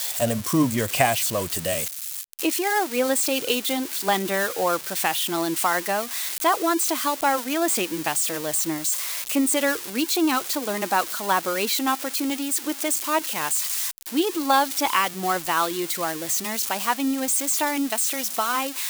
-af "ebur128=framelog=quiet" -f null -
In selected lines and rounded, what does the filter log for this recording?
Integrated loudness:
  I:         -23.0 LUFS
  Threshold: -33.0 LUFS
Loudness range:
  LRA:         0.8 LU
  Threshold: -43.0 LUFS
  LRA low:   -23.5 LUFS
  LRA high:  -22.6 LUFS